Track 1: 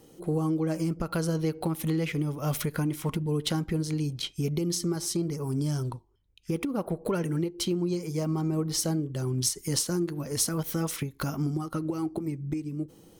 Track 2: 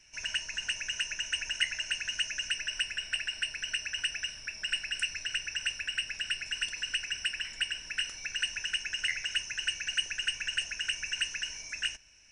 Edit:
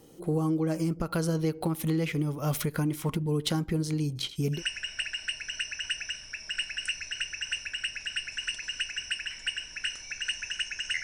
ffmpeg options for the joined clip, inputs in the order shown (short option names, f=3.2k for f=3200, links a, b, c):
-filter_complex "[0:a]asplit=3[a][b][c];[a]afade=t=out:st=4.15:d=0.02[d];[b]aecho=1:1:84:0.211,afade=t=in:st=4.15:d=0.02,afade=t=out:st=4.63:d=0.02[e];[c]afade=t=in:st=4.63:d=0.02[f];[d][e][f]amix=inputs=3:normalize=0,apad=whole_dur=11.03,atrim=end=11.03,atrim=end=4.63,asetpts=PTS-STARTPTS[g];[1:a]atrim=start=2.65:end=9.17,asetpts=PTS-STARTPTS[h];[g][h]acrossfade=d=0.12:c1=tri:c2=tri"